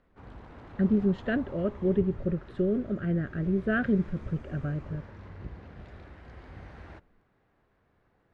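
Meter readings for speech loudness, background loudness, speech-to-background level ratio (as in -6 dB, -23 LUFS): -29.0 LUFS, -46.5 LUFS, 17.5 dB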